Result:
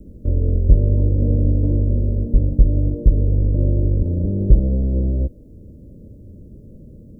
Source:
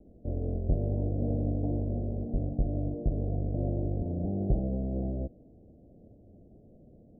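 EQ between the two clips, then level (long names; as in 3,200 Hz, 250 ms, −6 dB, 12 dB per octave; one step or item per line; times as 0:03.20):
bass and treble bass +9 dB, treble +10 dB
dynamic equaliser 160 Hz, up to −8 dB, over −50 dBFS, Q 0.9
Butterworth band-reject 730 Hz, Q 2.5
+9.0 dB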